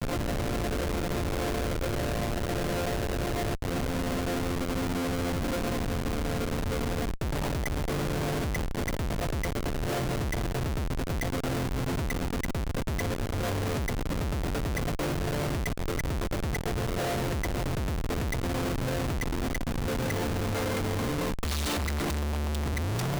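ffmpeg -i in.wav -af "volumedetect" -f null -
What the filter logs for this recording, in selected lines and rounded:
mean_volume: -29.3 dB
max_volume: -22.9 dB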